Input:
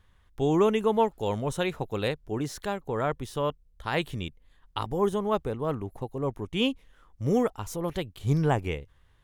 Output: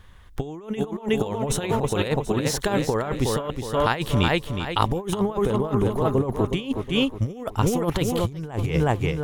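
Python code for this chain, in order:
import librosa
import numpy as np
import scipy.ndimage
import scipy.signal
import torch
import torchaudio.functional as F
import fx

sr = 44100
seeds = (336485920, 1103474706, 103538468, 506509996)

p1 = x + fx.echo_feedback(x, sr, ms=366, feedback_pct=38, wet_db=-8, dry=0)
p2 = fx.over_compress(p1, sr, threshold_db=-31.0, ratio=-0.5)
y = p2 * librosa.db_to_amplitude(8.5)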